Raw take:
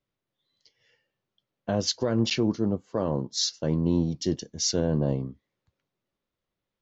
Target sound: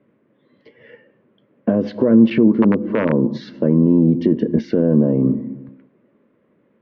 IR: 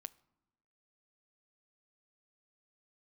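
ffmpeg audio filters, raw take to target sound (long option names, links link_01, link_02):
-filter_complex "[0:a]bandreject=frequency=910:width=20,acontrast=86,asplit=2[link_01][link_02];[1:a]atrim=start_sample=2205[link_03];[link_02][link_03]afir=irnorm=-1:irlink=0,volume=19.5dB[link_04];[link_01][link_04]amix=inputs=2:normalize=0,asettb=1/sr,asplit=3[link_05][link_06][link_07];[link_05]atrim=end=2.524[link_08];[link_06]atrim=start=2.52:end=3.21,asetpts=PTS-STARTPTS,afade=type=in:duration=0.004:curve=qsin,afade=type=out:start_time=0.686:duration=0.004:curve=qsin,aeval=exprs='(mod(0.473*val(0)+1,2)-1)/0.473':channel_layout=same[link_09];[link_07]atrim=start=3.206[link_10];[link_08][link_09]acrossfade=duration=0.004:curve1=hsin:curve2=qsin[link_11];[link_11][link_10]acrossfade=duration=0.004:curve1=qsin:curve2=hsin,acompressor=threshold=-9dB:ratio=6,equalizer=frequency=430:width_type=o:width=2.7:gain=10.5,alimiter=limit=-3.5dB:level=0:latency=1:release=124,highpass=120,equalizer=frequency=230:width_type=q:width=4:gain=10,equalizer=frequency=750:width_type=q:width=4:gain=-10,equalizer=frequency=1300:width_type=q:width=4:gain=-4,lowpass=frequency=2200:width=0.5412,lowpass=frequency=2200:width=1.3066,volume=-3.5dB"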